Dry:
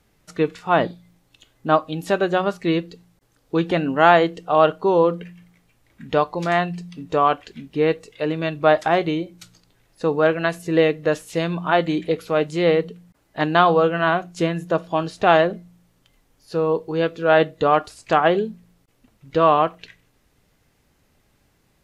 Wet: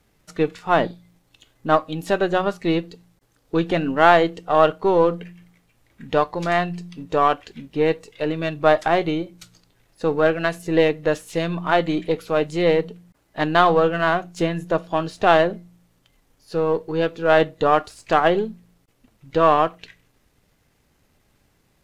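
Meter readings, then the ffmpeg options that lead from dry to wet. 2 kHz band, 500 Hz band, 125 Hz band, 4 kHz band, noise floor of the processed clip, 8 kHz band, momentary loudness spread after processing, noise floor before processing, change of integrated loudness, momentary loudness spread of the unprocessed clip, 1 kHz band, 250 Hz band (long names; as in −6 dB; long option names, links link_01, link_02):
0.0 dB, −0.5 dB, −1.0 dB, −0.5 dB, −64 dBFS, can't be measured, 10 LU, −64 dBFS, −0.5 dB, 10 LU, −0.5 dB, −0.5 dB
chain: -af "aeval=exprs='if(lt(val(0),0),0.708*val(0),val(0))':channel_layout=same,volume=1dB"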